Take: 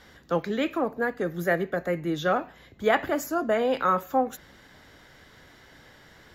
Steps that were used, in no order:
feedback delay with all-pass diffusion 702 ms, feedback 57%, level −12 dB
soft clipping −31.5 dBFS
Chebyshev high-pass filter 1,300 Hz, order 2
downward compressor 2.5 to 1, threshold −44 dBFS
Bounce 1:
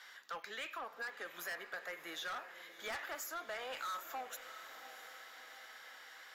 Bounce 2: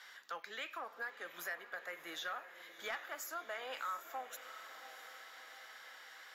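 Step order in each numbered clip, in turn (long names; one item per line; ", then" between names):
Chebyshev high-pass filter, then soft clipping, then downward compressor, then feedback delay with all-pass diffusion
Chebyshev high-pass filter, then downward compressor, then soft clipping, then feedback delay with all-pass diffusion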